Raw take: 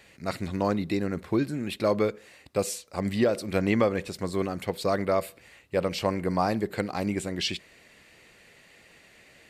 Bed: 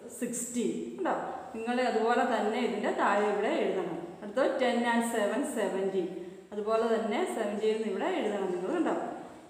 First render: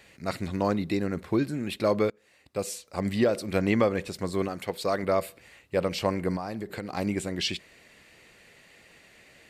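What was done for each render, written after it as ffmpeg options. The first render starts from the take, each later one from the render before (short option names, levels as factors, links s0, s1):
-filter_complex "[0:a]asettb=1/sr,asplit=3[s0][s1][s2];[s0]atrim=end=4.484[s3];[s1]atrim=start=4.48:end=5.03,asetpts=PTS-STARTPTS,afade=t=in:d=0.004:c=qsin,afade=t=out:st=0.546:d=0.004:c=qsin,lowshelf=f=250:g=-7[s4];[s2]atrim=start=5.026[s5];[s3][s4]acrossfade=d=0.004:c1=hsin:c2=qsin[s6];[s6][s5]acrossfade=d=0.004:c1=qsin:c2=hsin,asettb=1/sr,asplit=3[s7][s8][s9];[s7]atrim=end=6.364[s10];[s8]atrim=start=6.36:end=6.97,asetpts=PTS-STARTPTS,afade=t=in:d=0.004:c=qsin,afade=t=out:st=0.606:d=0.004:c=qsin,acompressor=threshold=0.0316:ratio=6:attack=3.2:release=140:knee=1:detection=peak[s11];[s9]atrim=start=6.966[s12];[s10][s11]acrossfade=d=0.004:c1=hsin:c2=qsin[s13];[s13][s12]acrossfade=d=0.004:c1=qsin:c2=hsin,asplit=2[s14][s15];[s14]atrim=end=2.1,asetpts=PTS-STARTPTS,afade=t=out:st=2.096:d=0.004:c=hsin:silence=0.11885[s16];[s15]atrim=start=2.1,asetpts=PTS-STARTPTS,afade=t=in:d=0.87:silence=0.11885[s17];[s16][s17]concat=n=2:v=0:a=1"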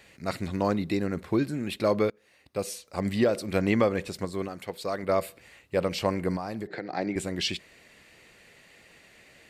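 -filter_complex "[0:a]asettb=1/sr,asplit=3[s0][s1][s2];[s0]atrim=end=1.884[s3];[s1]atrim=start=1.88:end=2.82,asetpts=PTS-STARTPTS,afade=t=in:d=0.004:c=qsin,afade=t=out:st=0.936:d=0.004:c=qsin,bandreject=f=7500:w=7.2[s4];[s2]atrim=start=2.816[s5];[s3][s4]acrossfade=d=0.004:c1=hsin:c2=qsin[s6];[s6][s5]acrossfade=d=0.004:c1=qsin:c2=hsin,asettb=1/sr,asplit=3[s7][s8][s9];[s7]atrim=end=6.674[s10];[s8]atrim=start=6.67:end=7.16,asetpts=PTS-STARTPTS,afade=t=in:d=0.004:c=qsin,afade=t=out:st=0.486:d=0.004:c=qsin,highpass=f=140:w=0.5412,highpass=f=140:w=1.3066,equalizer=f=220:t=q:w=4:g=-8,equalizer=f=330:t=q:w=4:g=4,equalizer=f=720:t=q:w=4:g=5,equalizer=f=1100:t=q:w=4:g=-7,equalizer=f=1800:t=q:w=4:g=6,equalizer=f=2900:t=q:w=4:g=-10,lowpass=f=4900:w=0.5412,lowpass=f=4900:w=1.3066[s11];[s9]atrim=start=7.156[s12];[s10][s11]acrossfade=d=0.004:c1=hsin:c2=qsin[s13];[s13][s12]acrossfade=d=0.004:c1=qsin:c2=hsin,asplit=3[s14][s15][s16];[s14]atrim=end=4.252[s17];[s15]atrim=start=4.248:end=5.092,asetpts=PTS-STARTPTS,volume=0.631[s18];[s16]atrim=start=5.088[s19];[s17][s18]acrossfade=d=0.004:c1=hsin:c2=hsin[s20];[s20][s19]acrossfade=d=0.004:c1=hsin:c2=hsin"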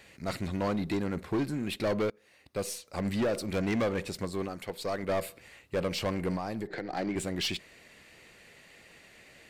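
-af "asoftclip=type=tanh:threshold=0.0596,aeval=exprs='0.0596*(cos(1*acos(clip(val(0)/0.0596,-1,1)))-cos(1*PI/2))+0.00188*(cos(8*acos(clip(val(0)/0.0596,-1,1)))-cos(8*PI/2))':c=same"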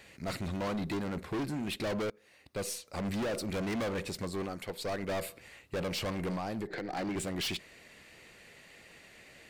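-af "volume=37.6,asoftclip=hard,volume=0.0266"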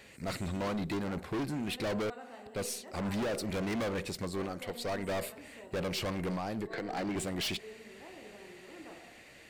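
-filter_complex "[1:a]volume=0.0944[s0];[0:a][s0]amix=inputs=2:normalize=0"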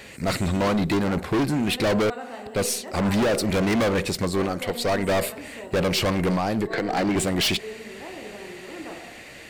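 -af "volume=3.98"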